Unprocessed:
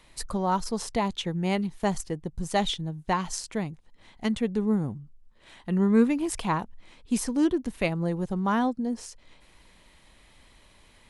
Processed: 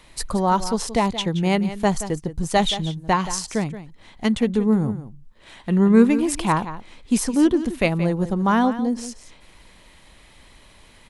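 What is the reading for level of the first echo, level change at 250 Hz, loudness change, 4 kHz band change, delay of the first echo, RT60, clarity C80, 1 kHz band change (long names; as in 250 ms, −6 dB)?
−13.0 dB, +6.5 dB, +6.5 dB, +6.5 dB, 175 ms, no reverb audible, no reverb audible, +6.5 dB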